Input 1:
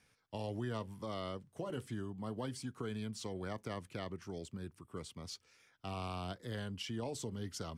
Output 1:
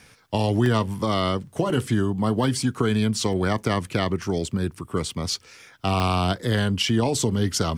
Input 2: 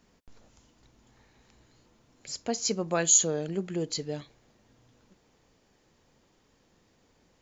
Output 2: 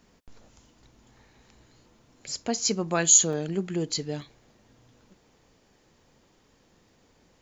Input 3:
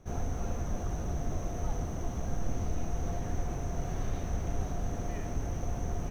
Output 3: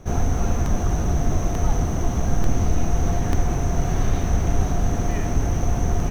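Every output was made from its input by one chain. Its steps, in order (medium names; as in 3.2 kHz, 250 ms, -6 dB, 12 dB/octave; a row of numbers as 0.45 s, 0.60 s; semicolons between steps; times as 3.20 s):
dynamic bell 540 Hz, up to -5 dB, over -48 dBFS, Q 2.5; crackling interface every 0.89 s, samples 64, zero, from 0.66 s; normalise loudness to -24 LUFS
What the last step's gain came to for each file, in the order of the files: +19.5 dB, +3.5 dB, +13.0 dB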